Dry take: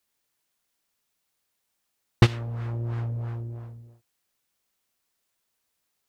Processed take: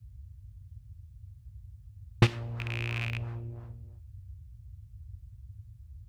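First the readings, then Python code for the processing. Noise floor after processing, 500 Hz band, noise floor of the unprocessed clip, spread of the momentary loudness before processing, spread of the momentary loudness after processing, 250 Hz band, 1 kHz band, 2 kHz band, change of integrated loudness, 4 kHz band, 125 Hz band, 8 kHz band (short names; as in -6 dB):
-54 dBFS, -4.5 dB, -78 dBFS, 16 LU, 23 LU, -4.5 dB, -4.0 dB, +0.5 dB, -4.5 dB, -2.0 dB, -4.5 dB, n/a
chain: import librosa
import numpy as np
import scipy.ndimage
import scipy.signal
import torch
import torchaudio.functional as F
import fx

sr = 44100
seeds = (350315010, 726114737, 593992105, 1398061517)

y = fx.rattle_buzz(x, sr, strikes_db=-27.0, level_db=-17.0)
y = fx.dmg_noise_band(y, sr, seeds[0], low_hz=48.0, high_hz=110.0, level_db=-43.0)
y = fx.rev_double_slope(y, sr, seeds[1], early_s=0.7, late_s=2.1, knee_db=-27, drr_db=18.5)
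y = y * librosa.db_to_amplitude(-4.5)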